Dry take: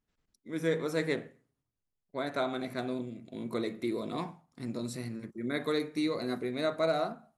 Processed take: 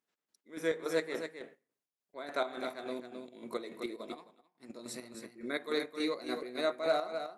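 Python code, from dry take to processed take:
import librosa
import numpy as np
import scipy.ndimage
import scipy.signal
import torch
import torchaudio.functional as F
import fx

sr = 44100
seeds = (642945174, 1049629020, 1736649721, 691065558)

y = scipy.signal.sosfilt(scipy.signal.butter(2, 360.0, 'highpass', fs=sr, output='sos'), x)
y = fx.chopper(y, sr, hz=3.5, depth_pct=60, duty_pct=50)
y = y + 10.0 ** (-7.5 / 20.0) * np.pad(y, (int(263 * sr / 1000.0), 0))[:len(y)]
y = fx.upward_expand(y, sr, threshold_db=-54.0, expansion=2.5, at=(3.96, 4.7))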